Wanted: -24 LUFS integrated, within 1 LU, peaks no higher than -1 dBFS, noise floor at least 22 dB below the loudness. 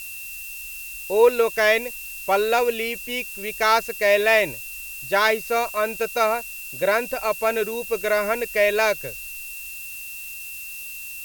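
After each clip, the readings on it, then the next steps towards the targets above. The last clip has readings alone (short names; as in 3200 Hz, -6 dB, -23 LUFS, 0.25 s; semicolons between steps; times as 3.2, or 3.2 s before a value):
steady tone 2700 Hz; tone level -36 dBFS; noise floor -36 dBFS; noise floor target -45 dBFS; loudness -23.0 LUFS; peak -5.0 dBFS; loudness target -24.0 LUFS
-> notch 2700 Hz, Q 30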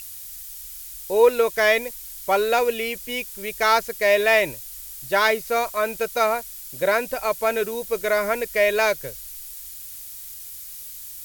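steady tone none; noise floor -38 dBFS; noise floor target -44 dBFS
-> noise print and reduce 6 dB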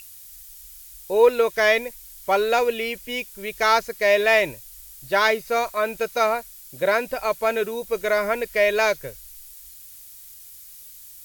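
noise floor -44 dBFS; loudness -21.5 LUFS; peak -5.0 dBFS; loudness target -24.0 LUFS
-> gain -2.5 dB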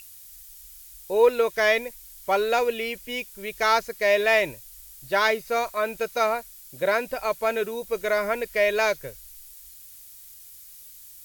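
loudness -24.0 LUFS; peak -7.5 dBFS; noise floor -47 dBFS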